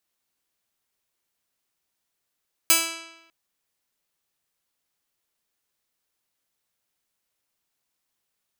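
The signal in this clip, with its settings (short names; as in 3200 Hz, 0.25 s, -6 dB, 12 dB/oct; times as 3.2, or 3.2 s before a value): plucked string E4, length 0.60 s, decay 0.98 s, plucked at 0.18, bright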